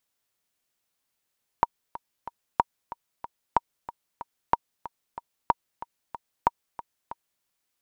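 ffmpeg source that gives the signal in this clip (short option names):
-f lavfi -i "aevalsrc='pow(10,(-5.5-16.5*gte(mod(t,3*60/186),60/186))/20)*sin(2*PI*942*mod(t,60/186))*exp(-6.91*mod(t,60/186)/0.03)':d=5.8:s=44100"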